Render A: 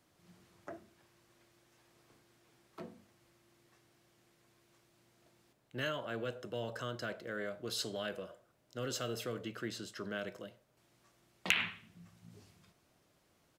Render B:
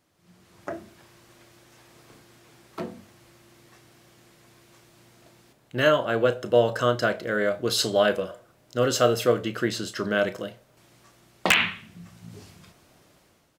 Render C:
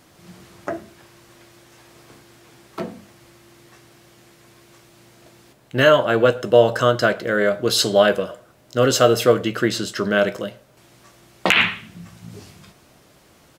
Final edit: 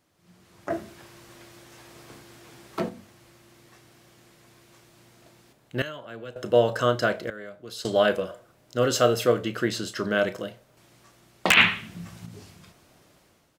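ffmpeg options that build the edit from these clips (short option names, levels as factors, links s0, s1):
-filter_complex "[2:a]asplit=2[s0][s1];[0:a]asplit=2[s2][s3];[1:a]asplit=5[s4][s5][s6][s7][s8];[s4]atrim=end=0.702[s9];[s0]atrim=start=0.698:end=2.892[s10];[s5]atrim=start=2.888:end=5.822[s11];[s2]atrim=start=5.818:end=6.362[s12];[s6]atrim=start=6.358:end=7.302[s13];[s3]atrim=start=7.298:end=7.852[s14];[s7]atrim=start=7.848:end=11.572[s15];[s1]atrim=start=11.568:end=12.262[s16];[s8]atrim=start=12.258[s17];[s9][s10]acrossfade=d=0.004:c1=hsin:c2=hsin[s18];[s18][s11]acrossfade=d=0.004:c1=hsin:c2=hsin[s19];[s19][s12]acrossfade=d=0.004:c1=hsin:c2=hsin[s20];[s20][s13]acrossfade=d=0.004:c1=hsin:c2=hsin[s21];[s21][s14]acrossfade=d=0.004:c1=hsin:c2=hsin[s22];[s22][s15]acrossfade=d=0.004:c1=hsin:c2=hsin[s23];[s23][s16]acrossfade=d=0.004:c1=hsin:c2=hsin[s24];[s24][s17]acrossfade=d=0.004:c1=hsin:c2=hsin"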